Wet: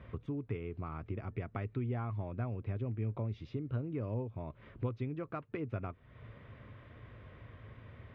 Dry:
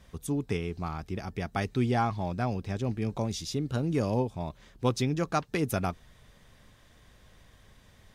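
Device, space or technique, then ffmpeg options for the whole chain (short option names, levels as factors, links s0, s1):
bass amplifier: -af "acompressor=threshold=0.00562:ratio=4,highpass=72,equalizer=f=110:t=q:w=4:g=8,equalizer=f=180:t=q:w=4:g=-7,equalizer=f=800:t=q:w=4:g=-9,equalizer=f=1700:t=q:w=4:g=-6,lowpass=f=2300:w=0.5412,lowpass=f=2300:w=1.3066,volume=2.24"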